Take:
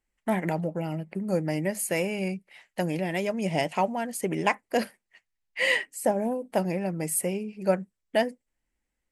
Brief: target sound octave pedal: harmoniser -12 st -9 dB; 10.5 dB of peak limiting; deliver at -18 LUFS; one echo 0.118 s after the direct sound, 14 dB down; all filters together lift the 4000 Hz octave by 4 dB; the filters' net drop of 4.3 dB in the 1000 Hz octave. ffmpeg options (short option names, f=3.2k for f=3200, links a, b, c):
-filter_complex "[0:a]equalizer=f=1k:t=o:g=-6.5,equalizer=f=4k:t=o:g=7,alimiter=limit=-20.5dB:level=0:latency=1,aecho=1:1:118:0.2,asplit=2[a][b];[b]asetrate=22050,aresample=44100,atempo=2,volume=-9dB[c];[a][c]amix=inputs=2:normalize=0,volume=13.5dB"